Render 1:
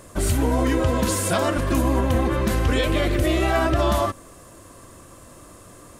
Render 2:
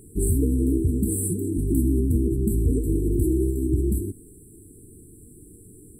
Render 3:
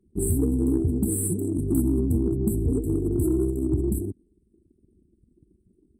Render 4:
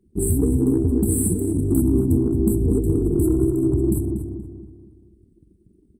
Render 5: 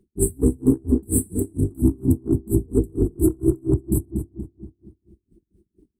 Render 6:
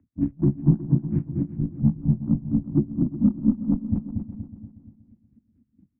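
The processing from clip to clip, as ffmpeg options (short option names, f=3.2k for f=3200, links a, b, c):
-af "afftfilt=real='re*(1-between(b*sr/4096,470,7600))':imag='im*(1-between(b*sr/4096,470,7600))':win_size=4096:overlap=0.75"
-af "highpass=73,anlmdn=1.58,aeval=exprs='0.299*(cos(1*acos(clip(val(0)/0.299,-1,1)))-cos(1*PI/2))+0.00944*(cos(4*acos(clip(val(0)/0.299,-1,1)))-cos(4*PI/2))+0.0106*(cos(6*acos(clip(val(0)/0.299,-1,1)))-cos(6*PI/2))':c=same"
-filter_complex "[0:a]asplit=2[a][b];[b]adelay=238,lowpass=f=2.7k:p=1,volume=-5dB,asplit=2[c][d];[d]adelay=238,lowpass=f=2.7k:p=1,volume=0.44,asplit=2[e][f];[f]adelay=238,lowpass=f=2.7k:p=1,volume=0.44,asplit=2[g][h];[h]adelay=238,lowpass=f=2.7k:p=1,volume=0.44,asplit=2[i][j];[j]adelay=238,lowpass=f=2.7k:p=1,volume=0.44[k];[a][c][e][g][i][k]amix=inputs=6:normalize=0,volume=3.5dB"
-af "aeval=exprs='val(0)*pow(10,-34*(0.5-0.5*cos(2*PI*4.3*n/s))/20)':c=same,volume=5dB"
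-af "aecho=1:1:366|732|1098:0.2|0.0479|0.0115,highpass=f=180:t=q:w=0.5412,highpass=f=180:t=q:w=1.307,lowpass=f=2.4k:t=q:w=0.5176,lowpass=f=2.4k:t=q:w=0.7071,lowpass=f=2.4k:t=q:w=1.932,afreqshift=-110"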